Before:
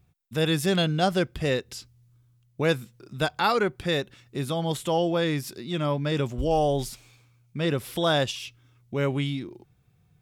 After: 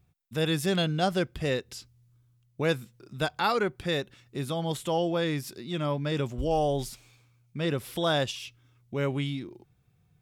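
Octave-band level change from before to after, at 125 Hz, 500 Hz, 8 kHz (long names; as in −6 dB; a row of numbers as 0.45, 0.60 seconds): −3.0, −3.0, −3.0 decibels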